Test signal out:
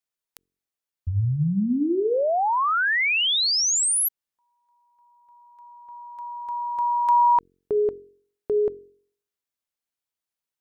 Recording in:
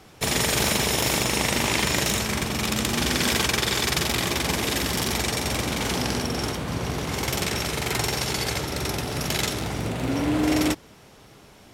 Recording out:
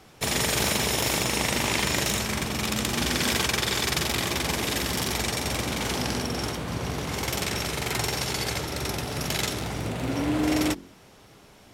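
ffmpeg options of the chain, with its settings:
-af "bandreject=f=45.4:t=h:w=4,bandreject=f=90.8:t=h:w=4,bandreject=f=136.2:t=h:w=4,bandreject=f=181.6:t=h:w=4,bandreject=f=227:t=h:w=4,bandreject=f=272.4:t=h:w=4,bandreject=f=317.8:t=h:w=4,bandreject=f=363.2:t=h:w=4,bandreject=f=408.6:t=h:w=4,bandreject=f=454:t=h:w=4,volume=-2dB"

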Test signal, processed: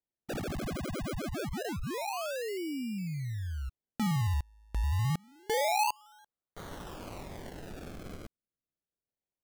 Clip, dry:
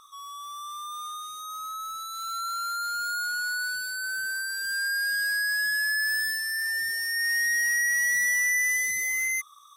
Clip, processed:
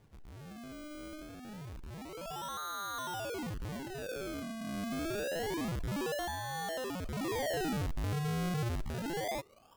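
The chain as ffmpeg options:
-af "acrusher=samples=33:mix=1:aa=0.000001:lfo=1:lforange=33:lforate=0.27,volume=-9dB"

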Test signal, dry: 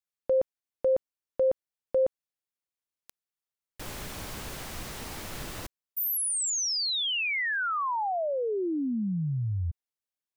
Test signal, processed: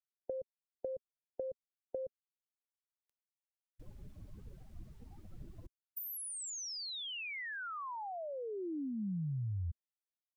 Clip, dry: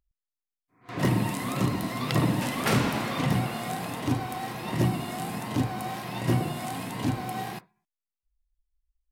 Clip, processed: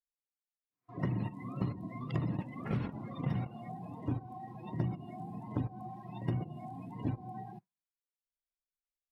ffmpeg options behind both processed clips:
-filter_complex "[0:a]acrossover=split=250[a][b];[b]acompressor=threshold=-35dB:ratio=5:attack=25:release=410:knee=2.83:detection=peak[c];[a][c]amix=inputs=2:normalize=0,agate=range=-12dB:threshold=-26dB:ratio=16:release=160:detection=rms,afftdn=nr=27:nf=-44,equalizer=f=240:t=o:w=0.27:g=-2.5,acompressor=threshold=-38dB:ratio=6:attack=26:release=154:knee=6:detection=rms,volume=5.5dB"

